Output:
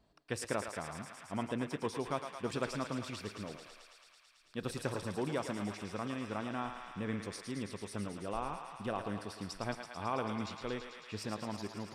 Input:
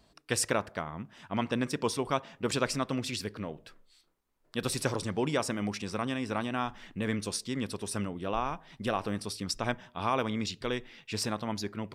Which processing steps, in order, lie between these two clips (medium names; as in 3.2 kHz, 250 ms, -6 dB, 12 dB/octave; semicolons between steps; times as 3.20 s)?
treble shelf 2.7 kHz -9 dB; thinning echo 110 ms, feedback 85%, high-pass 580 Hz, level -6.5 dB; trim -6 dB